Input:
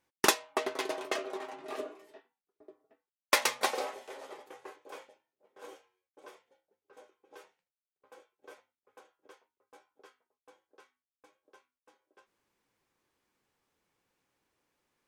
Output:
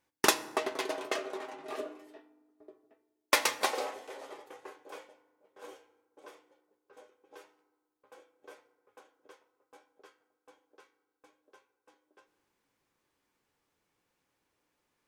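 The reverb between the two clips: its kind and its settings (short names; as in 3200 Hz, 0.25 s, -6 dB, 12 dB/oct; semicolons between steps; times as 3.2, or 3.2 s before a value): FDN reverb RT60 1.3 s, low-frequency decay 1.5×, high-frequency decay 0.55×, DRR 13.5 dB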